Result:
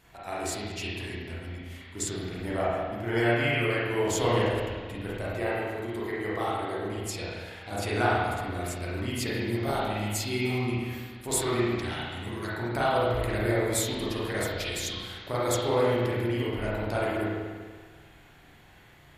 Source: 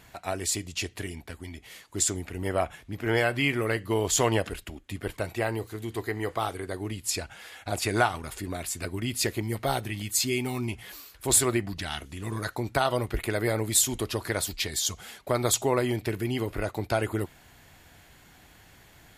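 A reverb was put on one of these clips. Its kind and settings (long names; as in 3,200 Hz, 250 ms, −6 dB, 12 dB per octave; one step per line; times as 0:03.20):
spring reverb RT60 1.6 s, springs 34/48 ms, chirp 20 ms, DRR −8 dB
level −8 dB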